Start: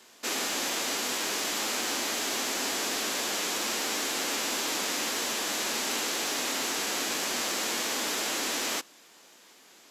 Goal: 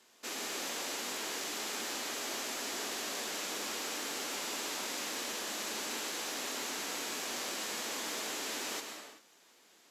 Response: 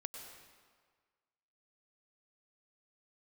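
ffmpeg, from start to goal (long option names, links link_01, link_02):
-filter_complex "[1:a]atrim=start_sample=2205,afade=type=out:start_time=0.39:duration=0.01,atrim=end_sample=17640,asetrate=37044,aresample=44100[link_01];[0:a][link_01]afir=irnorm=-1:irlink=0,volume=-6dB"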